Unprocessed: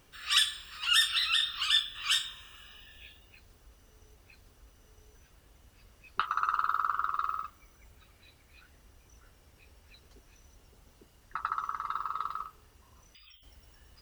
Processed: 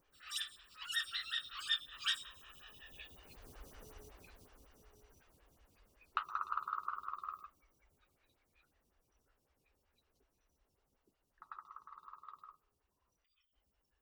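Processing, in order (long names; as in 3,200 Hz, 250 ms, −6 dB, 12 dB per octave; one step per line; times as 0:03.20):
source passing by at 0:03.74, 6 m/s, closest 2.3 metres
phaser with staggered stages 5.4 Hz
level +9.5 dB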